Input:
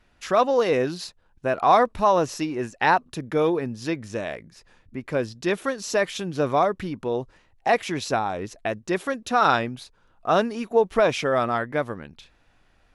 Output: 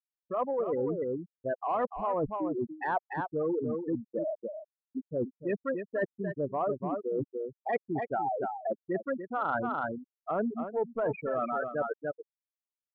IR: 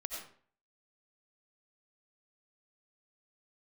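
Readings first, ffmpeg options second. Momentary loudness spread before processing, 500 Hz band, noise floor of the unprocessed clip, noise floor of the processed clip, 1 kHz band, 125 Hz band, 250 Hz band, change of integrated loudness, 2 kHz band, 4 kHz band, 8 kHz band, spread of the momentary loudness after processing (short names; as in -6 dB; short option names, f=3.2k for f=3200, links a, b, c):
12 LU, -8.0 dB, -62 dBFS, under -85 dBFS, -10.5 dB, -8.5 dB, -6.0 dB, -9.5 dB, -12.0 dB, under -30 dB, under -40 dB, 6 LU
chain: -af "afftfilt=real='re*gte(hypot(re,im),0.2)':imag='im*gte(hypot(re,im),0.2)':win_size=1024:overlap=0.75,acontrast=31,aecho=1:1:292:0.266,areverse,acompressor=threshold=-30dB:ratio=5,areverse"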